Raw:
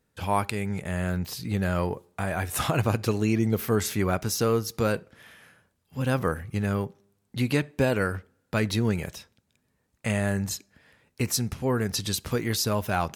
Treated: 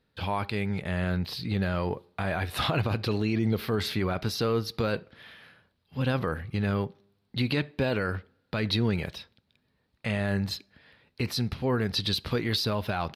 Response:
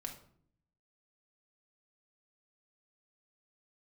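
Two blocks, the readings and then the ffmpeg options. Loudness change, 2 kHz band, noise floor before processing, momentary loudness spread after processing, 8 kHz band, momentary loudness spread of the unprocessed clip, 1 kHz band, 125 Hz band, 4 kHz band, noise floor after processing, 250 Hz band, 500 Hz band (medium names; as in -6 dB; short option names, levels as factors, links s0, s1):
-2.0 dB, -1.5 dB, -74 dBFS, 9 LU, -13.0 dB, 8 LU, -3.0 dB, -1.5 dB, +3.0 dB, -74 dBFS, -2.0 dB, -2.5 dB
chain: -af "aresample=32000,aresample=44100,alimiter=limit=0.126:level=0:latency=1:release=22,highshelf=f=5400:t=q:w=3:g=-9"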